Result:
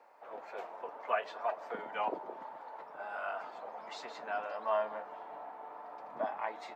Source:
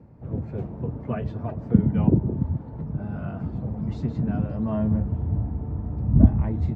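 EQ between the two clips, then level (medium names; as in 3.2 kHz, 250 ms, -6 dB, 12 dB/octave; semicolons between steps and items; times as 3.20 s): high-pass 720 Hz 24 dB/octave; +6.5 dB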